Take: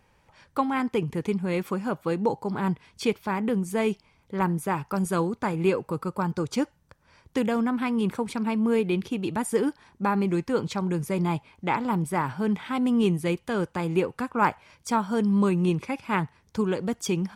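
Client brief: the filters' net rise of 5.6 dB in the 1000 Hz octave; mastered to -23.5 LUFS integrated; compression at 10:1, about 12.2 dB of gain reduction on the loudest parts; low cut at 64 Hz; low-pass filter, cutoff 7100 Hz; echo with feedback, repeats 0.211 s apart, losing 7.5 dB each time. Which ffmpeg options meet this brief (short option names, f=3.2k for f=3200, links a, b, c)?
-af "highpass=64,lowpass=7.1k,equalizer=f=1k:t=o:g=6.5,acompressor=threshold=-25dB:ratio=10,aecho=1:1:211|422|633|844|1055:0.422|0.177|0.0744|0.0312|0.0131,volume=6.5dB"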